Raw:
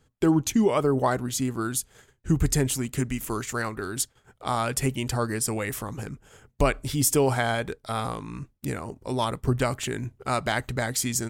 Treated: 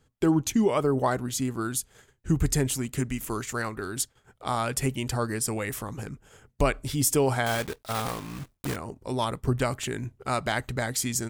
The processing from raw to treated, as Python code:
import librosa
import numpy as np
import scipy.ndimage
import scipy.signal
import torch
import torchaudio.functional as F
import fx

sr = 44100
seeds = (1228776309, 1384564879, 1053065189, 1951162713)

y = fx.block_float(x, sr, bits=3, at=(7.46, 8.78))
y = F.gain(torch.from_numpy(y), -1.5).numpy()